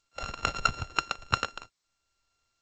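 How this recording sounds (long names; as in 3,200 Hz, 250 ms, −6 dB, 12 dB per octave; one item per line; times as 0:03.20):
a buzz of ramps at a fixed pitch in blocks of 32 samples
tremolo triangle 0.94 Hz, depth 45%
G.722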